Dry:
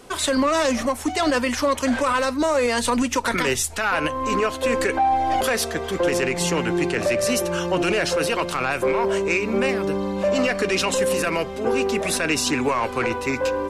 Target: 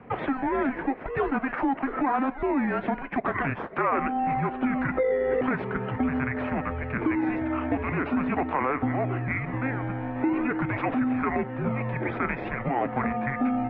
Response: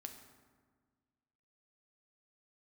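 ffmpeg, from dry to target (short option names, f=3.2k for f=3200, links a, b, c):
-filter_complex "[0:a]asplit=2[a][b];[b]acrusher=samples=20:mix=1:aa=0.000001:lfo=1:lforange=20:lforate=0.43,volume=-5dB[c];[a][c]amix=inputs=2:normalize=0,acompressor=threshold=-20dB:ratio=6,highpass=f=460:t=q:w=0.5412,highpass=f=460:t=q:w=1.307,lowpass=f=2.4k:t=q:w=0.5176,lowpass=f=2.4k:t=q:w=0.7071,lowpass=f=2.4k:t=q:w=1.932,afreqshift=-270"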